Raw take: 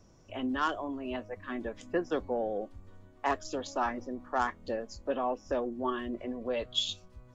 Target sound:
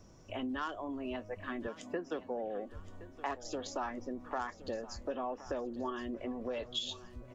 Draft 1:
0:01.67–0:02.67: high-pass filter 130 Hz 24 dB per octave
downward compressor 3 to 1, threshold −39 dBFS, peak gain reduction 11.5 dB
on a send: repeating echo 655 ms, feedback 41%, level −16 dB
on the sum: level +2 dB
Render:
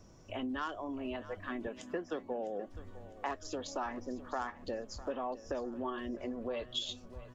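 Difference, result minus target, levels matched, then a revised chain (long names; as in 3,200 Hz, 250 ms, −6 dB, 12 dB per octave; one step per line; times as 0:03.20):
echo 415 ms early
0:01.67–0:02.67: high-pass filter 130 Hz 24 dB per octave
downward compressor 3 to 1, threshold −39 dBFS, peak gain reduction 11.5 dB
on a send: repeating echo 1,070 ms, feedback 41%, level −16 dB
on the sum: level +2 dB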